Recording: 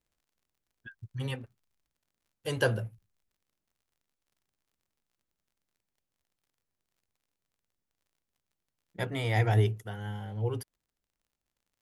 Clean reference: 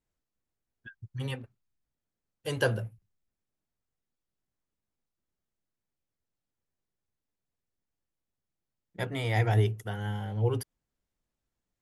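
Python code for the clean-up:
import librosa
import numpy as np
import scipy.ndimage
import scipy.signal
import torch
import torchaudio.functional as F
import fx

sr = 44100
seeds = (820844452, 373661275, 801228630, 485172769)

y = fx.fix_declick_ar(x, sr, threshold=6.5)
y = fx.fix_level(y, sr, at_s=9.78, step_db=4.0)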